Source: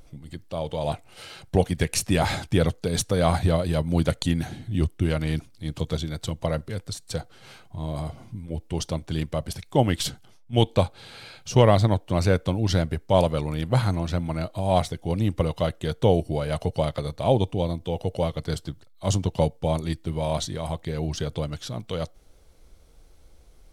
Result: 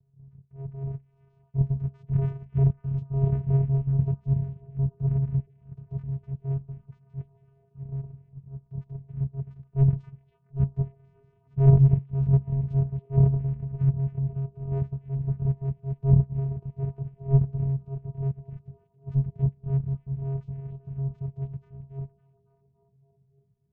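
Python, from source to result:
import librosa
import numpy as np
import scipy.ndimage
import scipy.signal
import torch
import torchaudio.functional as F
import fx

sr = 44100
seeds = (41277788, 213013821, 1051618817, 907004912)

y = fx.pitch_trill(x, sr, semitones=-12.0, every_ms=92)
y = fx.transient(y, sr, attack_db=-9, sustain_db=3)
y = fx.air_absorb(y, sr, metres=170.0)
y = fx.hum_notches(y, sr, base_hz=60, count=4)
y = fx.vocoder(y, sr, bands=4, carrier='square', carrier_hz=136.0)
y = fx.tilt_eq(y, sr, slope=-4.5)
y = fx.echo_stepped(y, sr, ms=279, hz=2700.0, octaves=-0.7, feedback_pct=70, wet_db=-6.0)
y = fx.upward_expand(y, sr, threshold_db=-31.0, expansion=1.5)
y = y * 10.0 ** (-4.5 / 20.0)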